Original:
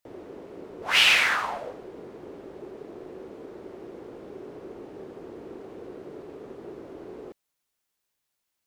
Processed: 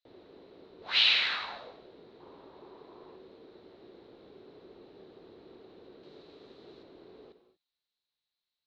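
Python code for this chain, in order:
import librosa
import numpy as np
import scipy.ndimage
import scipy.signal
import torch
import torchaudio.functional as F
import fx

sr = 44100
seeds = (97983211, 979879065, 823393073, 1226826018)

y = fx.peak_eq(x, sr, hz=1000.0, db=12.5, octaves=0.68, at=(2.2, 3.16))
y = fx.ladder_lowpass(y, sr, hz=4200.0, resonance_pct=80)
y = fx.high_shelf(y, sr, hz=3300.0, db=10.5, at=(6.03, 6.83))
y = fx.rev_gated(y, sr, seeds[0], gate_ms=260, shape='flat', drr_db=9.5)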